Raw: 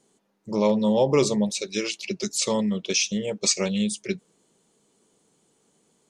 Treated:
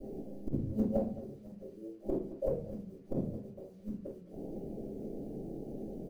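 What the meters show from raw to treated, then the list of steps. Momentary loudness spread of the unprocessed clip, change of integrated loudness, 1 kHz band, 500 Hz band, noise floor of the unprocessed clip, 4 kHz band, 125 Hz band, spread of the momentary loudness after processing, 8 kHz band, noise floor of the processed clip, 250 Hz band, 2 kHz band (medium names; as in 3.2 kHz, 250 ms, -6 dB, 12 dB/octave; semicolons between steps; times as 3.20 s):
9 LU, -15.5 dB, -19.5 dB, -13.0 dB, -67 dBFS, under -40 dB, -8.5 dB, 14 LU, under -40 dB, -54 dBFS, -11.5 dB, under -35 dB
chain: level-controlled noise filter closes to 630 Hz, open at -22 dBFS; steep low-pass 840 Hz 96 dB/octave; tilt EQ -1.5 dB/octave; in parallel at +3 dB: peak limiter -17.5 dBFS, peak gain reduction 9 dB; on the sum: compressor with a negative ratio -21 dBFS, ratio -0.5; inverted gate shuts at -23 dBFS, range -38 dB; companded quantiser 8-bit; delay 216 ms -16.5 dB; simulated room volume 35 m³, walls mixed, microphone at 2.4 m; transformer saturation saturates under 100 Hz; trim -4 dB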